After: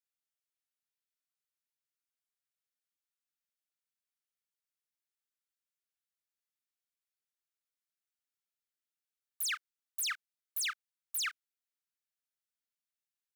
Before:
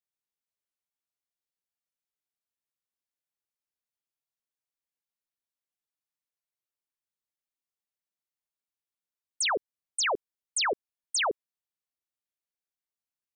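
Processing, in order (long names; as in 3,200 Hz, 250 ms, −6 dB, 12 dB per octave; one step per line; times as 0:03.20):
full-wave rectification
linear-phase brick-wall high-pass 1,200 Hz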